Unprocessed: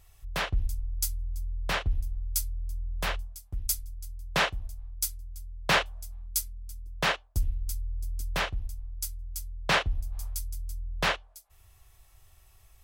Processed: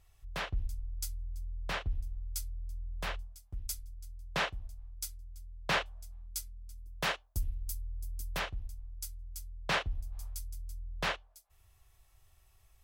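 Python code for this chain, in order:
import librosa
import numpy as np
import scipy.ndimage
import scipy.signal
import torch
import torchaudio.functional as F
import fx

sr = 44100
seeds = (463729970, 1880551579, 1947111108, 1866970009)

y = fx.high_shelf(x, sr, hz=8400.0, db=fx.steps((0.0, -6.5), (6.77, 6.0), (8.38, -2.5)))
y = F.gain(torch.from_numpy(y), -6.5).numpy()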